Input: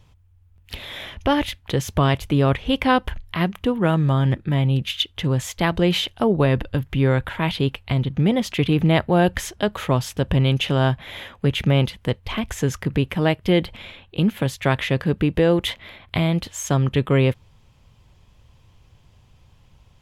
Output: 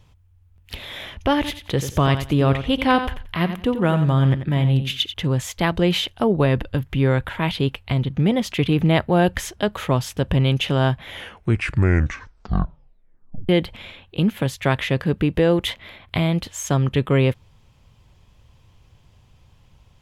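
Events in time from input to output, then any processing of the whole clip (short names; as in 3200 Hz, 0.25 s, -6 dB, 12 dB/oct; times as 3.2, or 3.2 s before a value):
1.35–5.14 feedback echo 89 ms, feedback 19%, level -10 dB
11.05 tape stop 2.44 s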